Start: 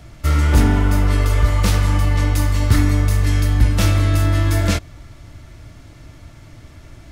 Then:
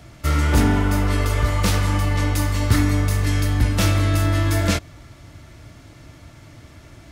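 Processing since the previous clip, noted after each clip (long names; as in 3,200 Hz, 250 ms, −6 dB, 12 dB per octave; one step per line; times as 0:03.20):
high-pass filter 91 Hz 6 dB per octave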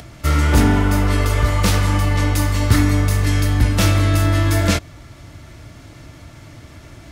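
upward compression, threshold −38 dBFS
level +3 dB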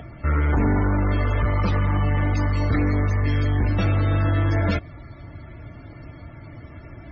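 soft clipping −16 dBFS, distortion −11 dB
high-frequency loss of the air 55 metres
spectral peaks only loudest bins 64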